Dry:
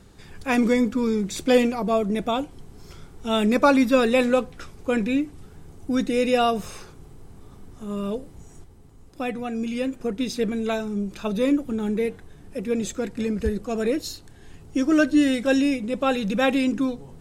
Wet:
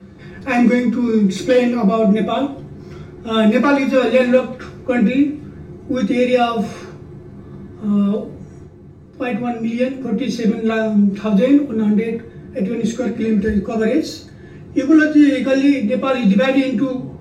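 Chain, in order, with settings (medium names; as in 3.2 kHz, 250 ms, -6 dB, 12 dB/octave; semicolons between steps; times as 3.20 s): compression 1.5:1, threshold -31 dBFS, peak gain reduction 7 dB; hard clipper -17 dBFS, distortion -28 dB; reverberation RT60 0.45 s, pre-delay 3 ms, DRR -5.5 dB; tape noise reduction on one side only decoder only; trim -5 dB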